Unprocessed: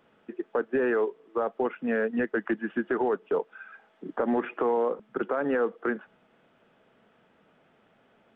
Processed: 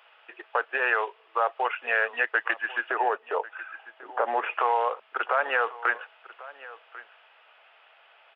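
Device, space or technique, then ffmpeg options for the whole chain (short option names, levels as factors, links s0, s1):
musical greeting card: -filter_complex "[0:a]aresample=11025,aresample=44100,highpass=f=710:w=0.5412,highpass=f=710:w=1.3066,equalizer=f=2700:t=o:w=0.46:g=8,asettb=1/sr,asplit=3[s0][s1][s2];[s0]atrim=end=2.904[s3];[s1]atrim=start=2.9:end=4.51,asetpts=PTS-STARTPTS,afade=t=in:d=0.004:c=qsin,afade=t=out:st=1.606:d=0.004:c=qsin,tiltshelf=f=810:g=6.5[s4];[s2]atrim=start=4.506[s5];[s3][s4]acrossfade=d=0.004:c1=hsin:c2=qsin[s6];[s6][s5]acrossfade=d=0.004:c1=qsin:c2=hsin,aecho=1:1:1094:0.119,volume=2.66"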